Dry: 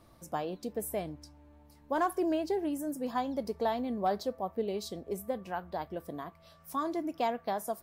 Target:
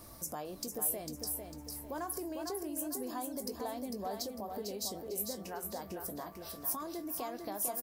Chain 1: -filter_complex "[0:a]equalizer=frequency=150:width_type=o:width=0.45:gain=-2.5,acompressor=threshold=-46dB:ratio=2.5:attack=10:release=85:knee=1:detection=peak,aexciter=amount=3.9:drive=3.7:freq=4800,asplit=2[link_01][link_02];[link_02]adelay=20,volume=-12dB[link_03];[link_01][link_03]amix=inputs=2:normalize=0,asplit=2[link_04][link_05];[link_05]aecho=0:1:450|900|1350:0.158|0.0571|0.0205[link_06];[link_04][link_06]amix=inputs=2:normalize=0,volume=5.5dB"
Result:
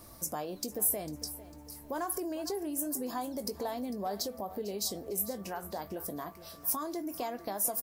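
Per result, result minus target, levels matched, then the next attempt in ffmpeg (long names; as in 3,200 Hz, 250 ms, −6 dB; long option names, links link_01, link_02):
echo-to-direct −10.5 dB; downward compressor: peak gain reduction −4.5 dB
-filter_complex "[0:a]equalizer=frequency=150:width_type=o:width=0.45:gain=-2.5,acompressor=threshold=-46dB:ratio=2.5:attack=10:release=85:knee=1:detection=peak,aexciter=amount=3.9:drive=3.7:freq=4800,asplit=2[link_01][link_02];[link_02]adelay=20,volume=-12dB[link_03];[link_01][link_03]amix=inputs=2:normalize=0,asplit=2[link_04][link_05];[link_05]aecho=0:1:450|900|1350|1800:0.531|0.191|0.0688|0.0248[link_06];[link_04][link_06]amix=inputs=2:normalize=0,volume=5.5dB"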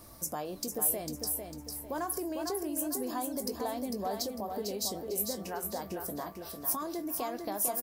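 downward compressor: peak gain reduction −4.5 dB
-filter_complex "[0:a]equalizer=frequency=150:width_type=o:width=0.45:gain=-2.5,acompressor=threshold=-53.5dB:ratio=2.5:attack=10:release=85:knee=1:detection=peak,aexciter=amount=3.9:drive=3.7:freq=4800,asplit=2[link_01][link_02];[link_02]adelay=20,volume=-12dB[link_03];[link_01][link_03]amix=inputs=2:normalize=0,asplit=2[link_04][link_05];[link_05]aecho=0:1:450|900|1350|1800:0.531|0.191|0.0688|0.0248[link_06];[link_04][link_06]amix=inputs=2:normalize=0,volume=5.5dB"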